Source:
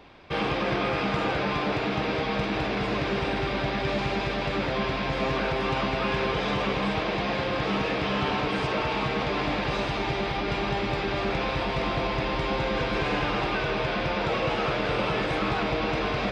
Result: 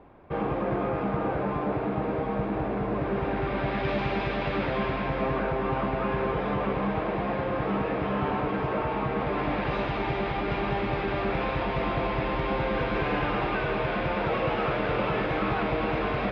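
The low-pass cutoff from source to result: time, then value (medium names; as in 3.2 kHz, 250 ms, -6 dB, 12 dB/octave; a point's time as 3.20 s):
2.93 s 1.1 kHz
3.50 s 1.8 kHz
3.90 s 2.8 kHz
4.61 s 2.8 kHz
5.51 s 1.5 kHz
9.09 s 1.5 kHz
9.77 s 2.4 kHz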